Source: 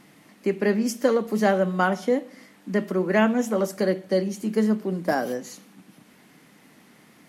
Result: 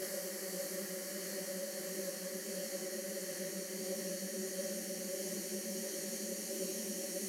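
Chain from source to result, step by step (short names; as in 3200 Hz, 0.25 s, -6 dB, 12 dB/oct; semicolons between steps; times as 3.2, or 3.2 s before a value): auto swell 0.346 s; RIAA curve recording; Paulstretch 49×, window 1.00 s, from 4.03; detuned doubles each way 52 cents; gain +2 dB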